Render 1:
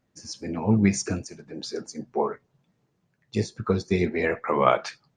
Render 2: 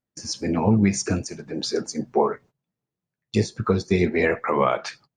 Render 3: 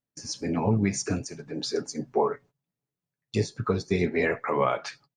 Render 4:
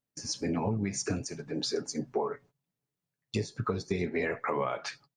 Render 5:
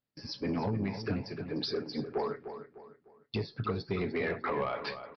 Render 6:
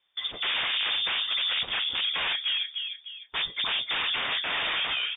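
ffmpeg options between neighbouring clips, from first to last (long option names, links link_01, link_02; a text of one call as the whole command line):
ffmpeg -i in.wav -af "agate=range=-23dB:threshold=-51dB:ratio=16:detection=peak,alimiter=limit=-16dB:level=0:latency=1:release=482,volume=7.5dB" out.wav
ffmpeg -i in.wav -af "aecho=1:1:7.1:0.34,volume=-4.5dB" out.wav
ffmpeg -i in.wav -af "acompressor=threshold=-27dB:ratio=6" out.wav
ffmpeg -i in.wav -filter_complex "[0:a]aresample=11025,asoftclip=type=tanh:threshold=-24.5dB,aresample=44100,asplit=2[link_01][link_02];[link_02]adelay=301,lowpass=frequency=3600:poles=1,volume=-10dB,asplit=2[link_03][link_04];[link_04]adelay=301,lowpass=frequency=3600:poles=1,volume=0.37,asplit=2[link_05][link_06];[link_06]adelay=301,lowpass=frequency=3600:poles=1,volume=0.37,asplit=2[link_07][link_08];[link_08]adelay=301,lowpass=frequency=3600:poles=1,volume=0.37[link_09];[link_01][link_03][link_05][link_07][link_09]amix=inputs=5:normalize=0" out.wav
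ffmpeg -i in.wav -af "aeval=exprs='0.075*sin(PI/2*6.31*val(0)/0.075)':channel_layout=same,lowpass=frequency=3100:width_type=q:width=0.5098,lowpass=frequency=3100:width_type=q:width=0.6013,lowpass=frequency=3100:width_type=q:width=0.9,lowpass=frequency=3100:width_type=q:width=2.563,afreqshift=-3700,volume=-2dB" out.wav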